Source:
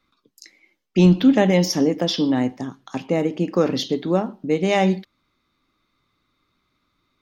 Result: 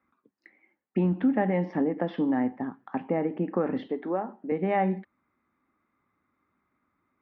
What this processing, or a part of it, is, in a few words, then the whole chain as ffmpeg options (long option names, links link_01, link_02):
bass amplifier: -filter_complex "[0:a]acompressor=threshold=-19dB:ratio=3,highpass=77,equalizer=frequency=130:width_type=q:width=4:gain=-7,equalizer=frequency=230:width_type=q:width=4:gain=4,equalizer=frequency=820:width_type=q:width=4:gain=6,equalizer=frequency=1800:width_type=q:width=4:gain=5,lowpass=frequency=2000:width=0.5412,lowpass=frequency=2000:width=1.3066,asettb=1/sr,asplit=3[link_01][link_02][link_03];[link_01]atrim=end=3.874[link_04];[link_02]atrim=start=3.87:end=4.52,asetpts=PTS-STARTPTS,afade=type=in:duration=0.004:curve=qsin,afade=type=out:start_time=0.646:duration=0.004:curve=qsin,highpass=320[link_05];[link_03]atrim=start=4.516[link_06];[link_04][link_05]acrossfade=duration=0.004:curve1=hsin:curve2=qsin[link_07];[link_07][link_06]acrossfade=duration=0.004:curve1=qsin:curve2=hsin,volume=-4.5dB"